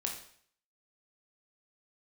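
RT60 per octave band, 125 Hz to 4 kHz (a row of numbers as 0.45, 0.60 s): 0.60, 0.55, 0.55, 0.60, 0.60, 0.55 s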